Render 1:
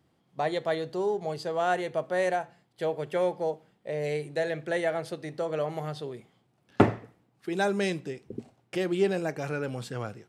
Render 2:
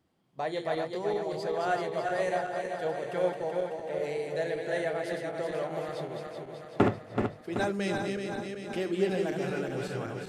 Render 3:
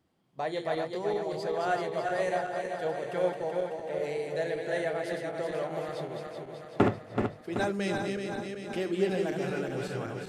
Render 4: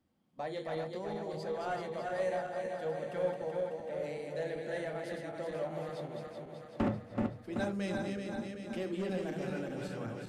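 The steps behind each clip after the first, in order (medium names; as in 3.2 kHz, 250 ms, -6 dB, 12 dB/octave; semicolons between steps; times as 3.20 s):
backward echo that repeats 190 ms, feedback 77%, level -4.5 dB; hum notches 50/100/150 Hz; flange 0.79 Hz, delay 2.7 ms, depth 9.7 ms, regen -67%
no audible change
saturation -21 dBFS, distortion -16 dB; on a send at -8.5 dB: reverberation RT60 0.20 s, pre-delay 3 ms; on the sum: trim -6.5 dB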